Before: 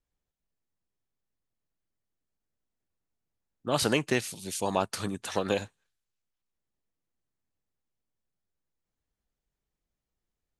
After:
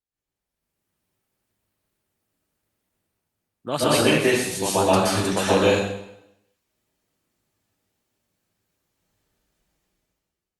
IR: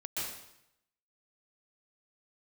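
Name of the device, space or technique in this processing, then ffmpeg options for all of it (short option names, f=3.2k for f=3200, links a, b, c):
far-field microphone of a smart speaker: -filter_complex "[1:a]atrim=start_sample=2205[a];[0:a][a]afir=irnorm=-1:irlink=0,highpass=f=90:p=1,dynaudnorm=f=120:g=11:m=17dB,volume=-3.5dB" -ar 48000 -c:a libopus -b:a 48k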